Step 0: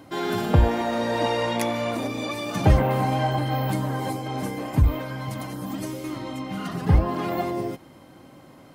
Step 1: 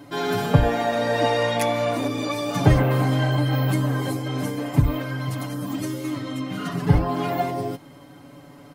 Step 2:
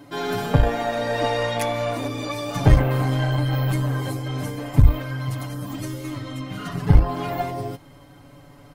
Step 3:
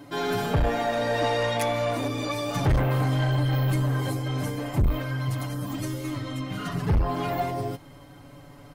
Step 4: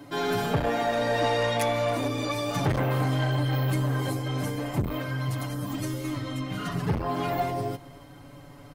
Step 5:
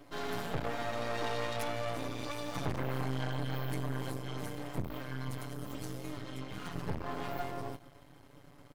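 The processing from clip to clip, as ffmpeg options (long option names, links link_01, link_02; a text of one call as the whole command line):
ffmpeg -i in.wav -af "aecho=1:1:7:0.89" out.wav
ffmpeg -i in.wav -af "asubboost=boost=7:cutoff=84,aeval=exprs='1*(cos(1*acos(clip(val(0)/1,-1,1)))-cos(1*PI/2))+0.1*(cos(4*acos(clip(val(0)/1,-1,1)))-cos(4*PI/2))':channel_layout=same,volume=-1.5dB" out.wav
ffmpeg -i in.wav -af "asoftclip=type=tanh:threshold=-17dB" out.wav
ffmpeg -i in.wav -filter_complex "[0:a]acrossover=split=110[link_01][link_02];[link_01]acompressor=threshold=-39dB:ratio=6[link_03];[link_03][link_02]amix=inputs=2:normalize=0,aecho=1:1:273:0.0794" out.wav
ffmpeg -i in.wav -af "aeval=exprs='max(val(0),0)':channel_layout=same,volume=-6dB" out.wav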